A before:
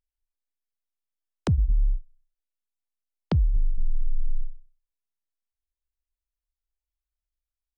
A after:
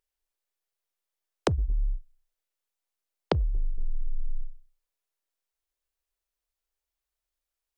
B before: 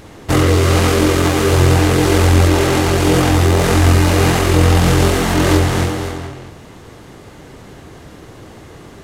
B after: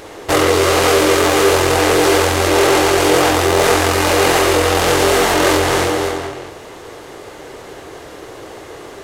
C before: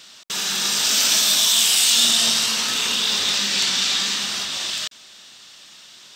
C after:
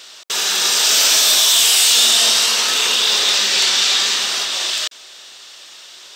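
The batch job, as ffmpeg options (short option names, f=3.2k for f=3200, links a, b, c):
-af "apsyclip=12.5dB,lowshelf=f=290:t=q:w=1.5:g=-10.5,volume=-7dB"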